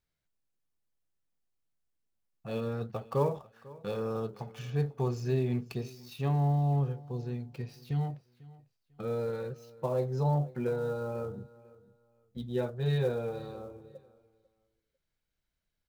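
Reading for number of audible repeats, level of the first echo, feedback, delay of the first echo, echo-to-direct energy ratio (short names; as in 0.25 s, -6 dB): 2, -21.0 dB, 25%, 0.497 s, -20.5 dB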